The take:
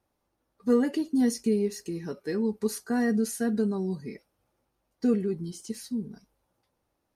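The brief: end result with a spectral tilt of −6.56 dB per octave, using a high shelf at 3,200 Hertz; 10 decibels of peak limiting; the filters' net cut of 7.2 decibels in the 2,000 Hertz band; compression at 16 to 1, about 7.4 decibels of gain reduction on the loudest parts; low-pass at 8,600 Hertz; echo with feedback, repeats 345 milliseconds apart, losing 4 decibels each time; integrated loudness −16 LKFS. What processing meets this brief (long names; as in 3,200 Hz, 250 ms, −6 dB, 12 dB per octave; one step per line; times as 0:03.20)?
low-pass filter 8,600 Hz
parametric band 2,000 Hz −7 dB
high-shelf EQ 3,200 Hz −6.5 dB
downward compressor 16 to 1, threshold −26 dBFS
brickwall limiter −28.5 dBFS
repeating echo 345 ms, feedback 63%, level −4 dB
level +20.5 dB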